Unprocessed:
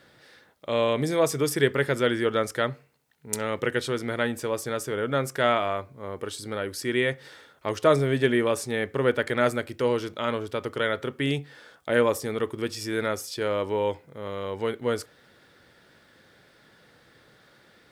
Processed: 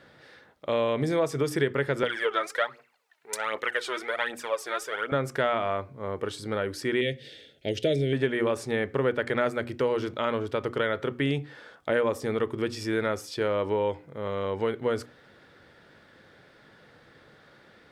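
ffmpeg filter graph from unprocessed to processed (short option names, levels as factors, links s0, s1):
-filter_complex "[0:a]asettb=1/sr,asplit=3[s0][s1][s2];[s0]atrim=end=2.034[s3];[s1]atrim=start=2.03:end=5.12,asetpts=PTS-STARTPTS,afade=t=in:d=0.004:c=qsin,afade=t=out:st=3.086:d=0.004:c=qsin,highpass=710,aphaser=in_gain=1:out_gain=1:delay=3.3:decay=0.63:speed=1.3:type=triangular[s4];[s2]atrim=start=5.116[s5];[s3][s4]acrossfade=d=0.004:c1=hsin:c2=qsin[s6];[s6][s5]acrossfade=d=0.004:c1=qsin:c2=hsin,asettb=1/sr,asplit=3[s7][s8][s9];[s7]atrim=end=7.014[s10];[s8]atrim=start=7.01:end=8.13,asetpts=PTS-STARTPTS,afade=t=in:d=0.004:c=qsin,afade=t=out:st=1.116:d=0.004:c=qsin,asuperstop=centerf=1100:order=4:qfactor=0.67,equalizer=f=3300:w=1.8:g=7.5[s11];[s9]atrim=start=8.126[s12];[s10][s11]acrossfade=d=0.004:c1=hsin:c2=qsin[s13];[s13][s12]acrossfade=d=0.004:c1=qsin:c2=hsin,lowpass=f=2800:p=1,bandreject=f=60:t=h:w=6,bandreject=f=120:t=h:w=6,bandreject=f=180:t=h:w=6,bandreject=f=240:t=h:w=6,bandreject=f=300:t=h:w=6,bandreject=f=360:t=h:w=6,acompressor=threshold=0.0501:ratio=3,volume=1.41"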